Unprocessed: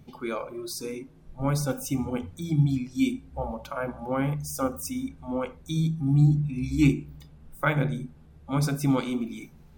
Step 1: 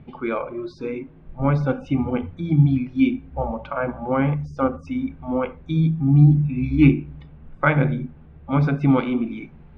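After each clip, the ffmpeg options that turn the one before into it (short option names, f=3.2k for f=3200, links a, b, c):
-af "lowpass=f=2.8k:w=0.5412,lowpass=f=2.8k:w=1.3066,volume=6.5dB"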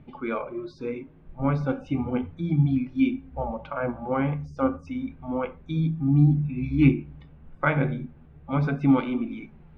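-af "flanger=delay=3.3:depth=8:regen=68:speed=0.33:shape=sinusoidal"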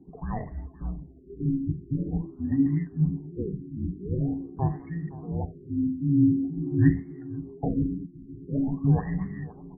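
-af "afreqshift=-420,aecho=1:1:518|1036|1554|2072|2590:0.133|0.072|0.0389|0.021|0.0113,afftfilt=real='re*lt(b*sr/1024,370*pow(2200/370,0.5+0.5*sin(2*PI*0.46*pts/sr)))':imag='im*lt(b*sr/1024,370*pow(2200/370,0.5+0.5*sin(2*PI*0.46*pts/sr)))':win_size=1024:overlap=0.75,volume=-2dB"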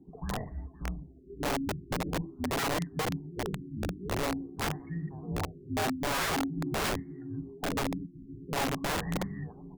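-af "aeval=exprs='(mod(13.3*val(0)+1,2)-1)/13.3':c=same,volume=-3dB"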